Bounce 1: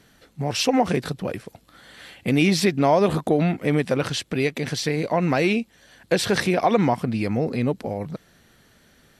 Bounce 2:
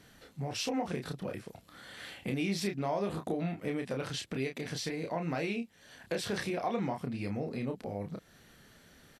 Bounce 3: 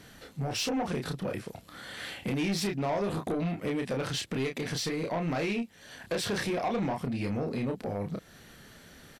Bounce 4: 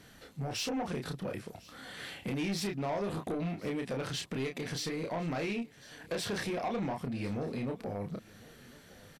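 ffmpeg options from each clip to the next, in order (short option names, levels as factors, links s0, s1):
-filter_complex "[0:a]acompressor=threshold=0.0126:ratio=2,asplit=2[s0][s1];[s1]adelay=30,volume=0.562[s2];[s0][s2]amix=inputs=2:normalize=0,volume=0.668"
-af "asoftclip=type=tanh:threshold=0.0266,volume=2.11"
-af "aecho=1:1:1052:0.0841,volume=0.631"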